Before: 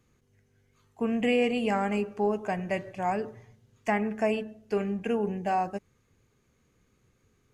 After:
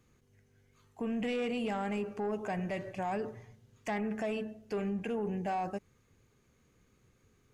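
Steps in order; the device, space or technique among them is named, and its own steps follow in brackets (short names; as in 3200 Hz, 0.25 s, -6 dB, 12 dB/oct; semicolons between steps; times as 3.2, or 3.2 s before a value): soft clipper into limiter (soft clip -20.5 dBFS, distortion -17 dB; limiter -28 dBFS, peak gain reduction 7 dB)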